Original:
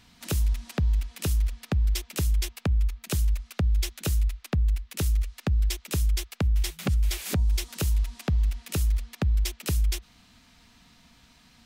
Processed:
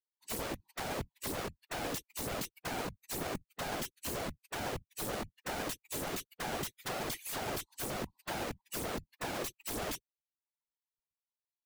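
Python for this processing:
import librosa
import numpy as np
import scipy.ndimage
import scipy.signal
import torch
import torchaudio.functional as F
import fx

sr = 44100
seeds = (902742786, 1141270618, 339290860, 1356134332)

y = fx.bin_expand(x, sr, power=3.0)
y = (np.mod(10.0 ** (33.5 / 20.0) * y + 1.0, 2.0) - 1.0) / 10.0 ** (33.5 / 20.0)
y = fx.whisperise(y, sr, seeds[0])
y = F.gain(torch.from_numpy(y), 1.0).numpy()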